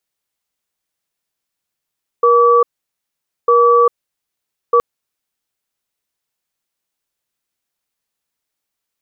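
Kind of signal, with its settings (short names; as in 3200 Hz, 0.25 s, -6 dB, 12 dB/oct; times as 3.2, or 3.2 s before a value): cadence 476 Hz, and 1150 Hz, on 0.40 s, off 0.85 s, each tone -10 dBFS 2.57 s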